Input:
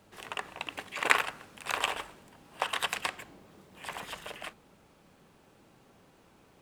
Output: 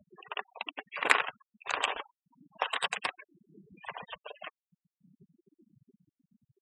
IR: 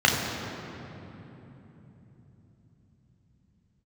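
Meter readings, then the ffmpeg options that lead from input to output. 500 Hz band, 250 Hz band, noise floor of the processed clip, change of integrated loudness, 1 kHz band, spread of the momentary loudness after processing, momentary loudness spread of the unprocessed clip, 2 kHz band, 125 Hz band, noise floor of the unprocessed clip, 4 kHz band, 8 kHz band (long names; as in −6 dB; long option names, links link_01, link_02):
−0.5 dB, −2.5 dB, below −85 dBFS, 0.0 dB, 0.0 dB, 19 LU, 18 LU, 0.0 dB, −6.5 dB, −62 dBFS, −1.0 dB, −4.5 dB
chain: -af "acompressor=mode=upward:threshold=-42dB:ratio=2.5,afftfilt=real='re*gte(hypot(re,im),0.0178)':imag='im*gte(hypot(re,im),0.0178)':win_size=1024:overlap=0.75"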